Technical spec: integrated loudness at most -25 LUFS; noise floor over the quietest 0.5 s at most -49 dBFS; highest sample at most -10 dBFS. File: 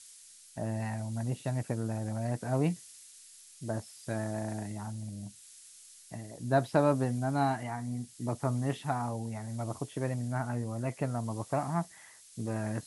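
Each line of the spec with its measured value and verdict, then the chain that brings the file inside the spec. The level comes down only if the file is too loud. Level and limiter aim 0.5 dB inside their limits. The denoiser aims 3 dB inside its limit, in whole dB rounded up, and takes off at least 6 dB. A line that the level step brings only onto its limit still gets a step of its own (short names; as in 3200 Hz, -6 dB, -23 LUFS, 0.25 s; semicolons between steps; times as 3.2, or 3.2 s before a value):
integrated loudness -34.0 LUFS: OK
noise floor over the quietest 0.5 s -55 dBFS: OK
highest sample -11.5 dBFS: OK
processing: none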